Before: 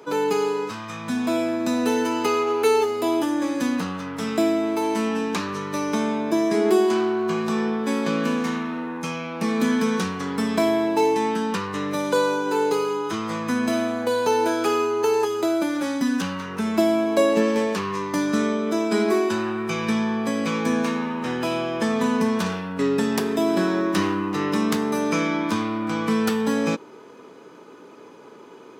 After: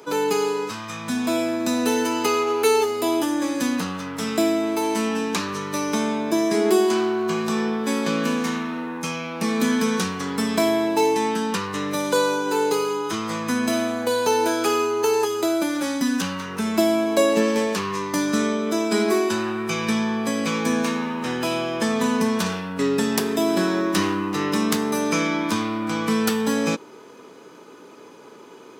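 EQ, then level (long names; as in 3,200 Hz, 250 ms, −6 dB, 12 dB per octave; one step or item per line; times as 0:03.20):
high-shelf EQ 3,700 Hz +7.5 dB
0.0 dB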